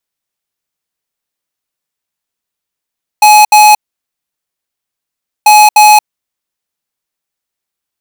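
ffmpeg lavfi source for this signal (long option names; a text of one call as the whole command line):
ffmpeg -f lavfi -i "aevalsrc='0.708*(2*lt(mod(844*t,1),0.5)-1)*clip(min(mod(mod(t,2.24),0.3),0.23-mod(mod(t,2.24),0.3))/0.005,0,1)*lt(mod(t,2.24),0.6)':duration=4.48:sample_rate=44100" out.wav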